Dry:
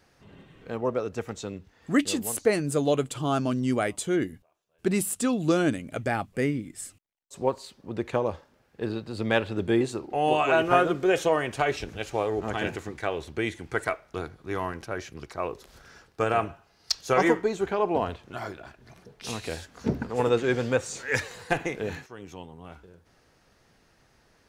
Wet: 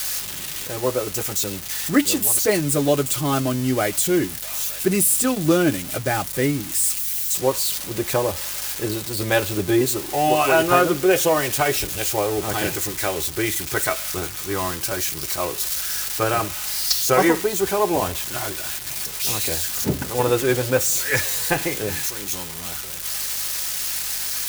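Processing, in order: switching spikes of -20.5 dBFS; notch comb 230 Hz; hum 50 Hz, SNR 28 dB; gain +6 dB

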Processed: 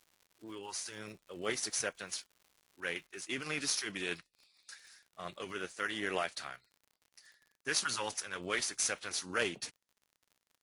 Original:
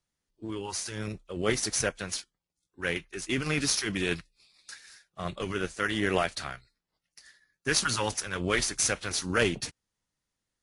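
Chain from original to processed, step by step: HPF 450 Hz 6 dB/oct; crackle 180/s -45 dBFS, from 3.23 s 49/s; gain -6 dB

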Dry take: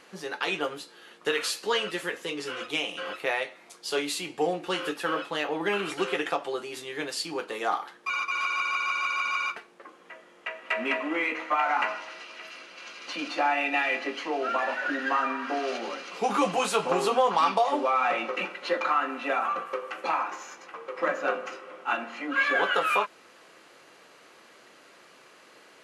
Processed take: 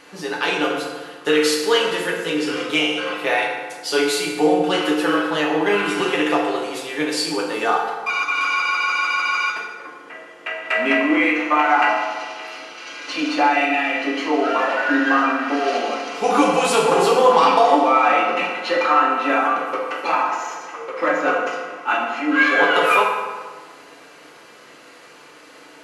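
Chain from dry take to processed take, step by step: 13.62–14.16 compressor, threshold -27 dBFS, peak gain reduction 5.5 dB; FDN reverb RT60 1.5 s, low-frequency decay 1.05×, high-frequency decay 0.65×, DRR -1.5 dB; gain +5.5 dB

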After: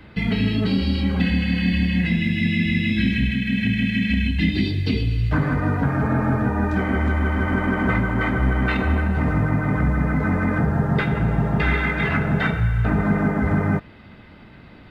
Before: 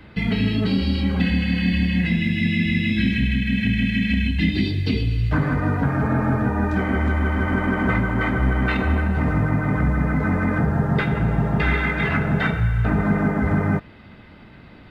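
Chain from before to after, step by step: 3.29–4.09 bell 61 Hz -13 dB 0.24 oct

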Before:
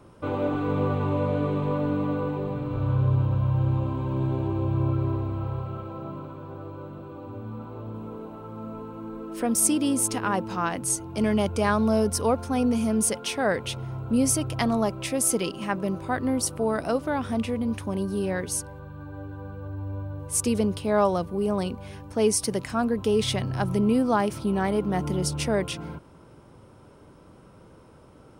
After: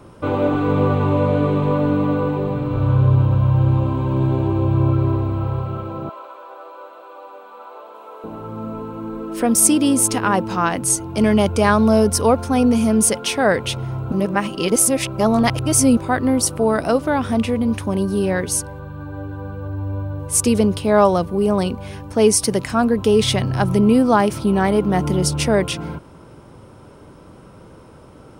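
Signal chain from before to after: 6.09–8.24 HPF 560 Hz 24 dB/oct; 14.12–15.97 reverse; gain +8 dB

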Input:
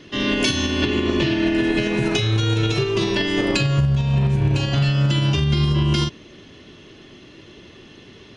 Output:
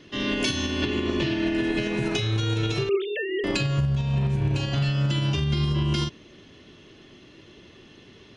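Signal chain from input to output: 2.89–3.44 sine-wave speech; gain -5.5 dB

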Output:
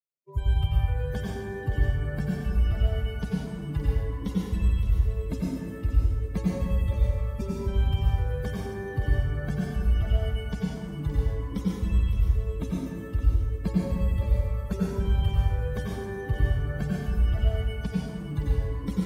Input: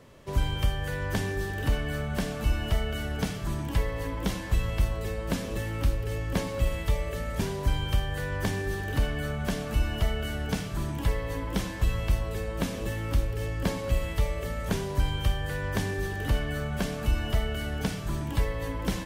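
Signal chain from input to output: per-bin expansion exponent 3; HPF 67 Hz; low shelf 320 Hz +11.5 dB; split-band echo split 390 Hz, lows 0.195 s, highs 0.569 s, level -10.5 dB; plate-style reverb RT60 1.5 s, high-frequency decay 0.6×, pre-delay 80 ms, DRR -5 dB; gain -5 dB

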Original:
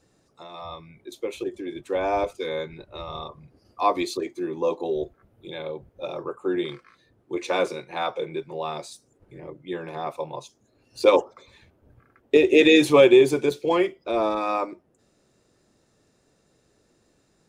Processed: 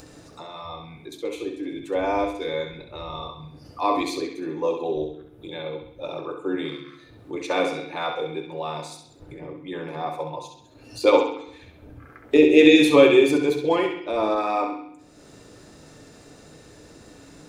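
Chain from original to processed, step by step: upward compressor, threshold -33 dBFS; on a send: narrowing echo 66 ms, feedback 55%, band-pass 2900 Hz, level -4 dB; on the sum: FDN reverb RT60 0.69 s, low-frequency decay 1.4×, high-frequency decay 0.25×, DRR 6 dB; gain -1 dB

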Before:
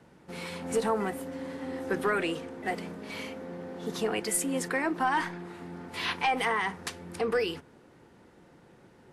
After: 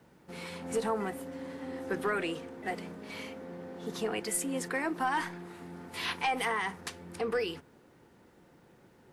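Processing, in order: 4.74–6.81 high shelf 8500 Hz +9.5 dB; requantised 12-bit, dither none; gain -3.5 dB

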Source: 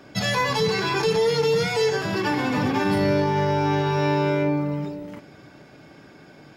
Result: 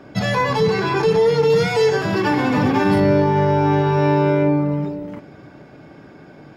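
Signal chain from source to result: high shelf 2400 Hz -12 dB, from 1.5 s -6.5 dB, from 3 s -12 dB; gain +6 dB

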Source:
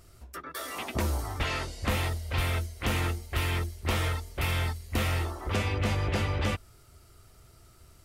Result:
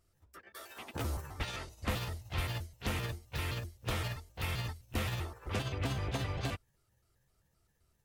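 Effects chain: trilling pitch shifter +5 st, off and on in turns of 0.13 s; upward expander 1.5:1, over -50 dBFS; gain -5 dB

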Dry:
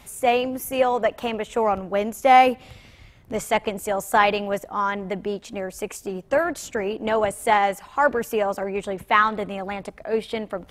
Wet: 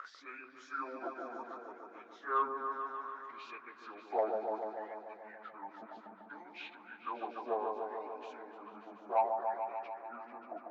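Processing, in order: pitch shift by moving bins -11 st; HPF 210 Hz 24 dB/oct; high shelf 9100 Hz -11.5 dB; upward compressor, threshold -25 dBFS; wah 0.64 Hz 660–2500 Hz, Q 12; soft clip -20 dBFS, distortion -22 dB; repeats that get brighter 0.146 s, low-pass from 750 Hz, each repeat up 1 oct, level -3 dB; gain +2 dB

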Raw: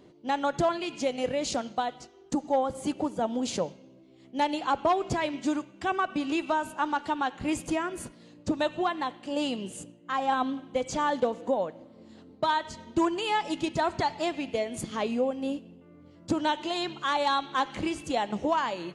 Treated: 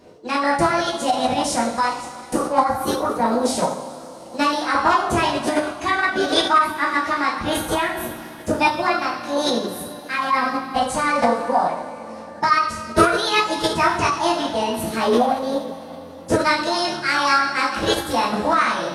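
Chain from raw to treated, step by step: two-slope reverb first 0.52 s, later 4.1 s, from -18 dB, DRR -5.5 dB; formant shift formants +5 st; gain +2.5 dB

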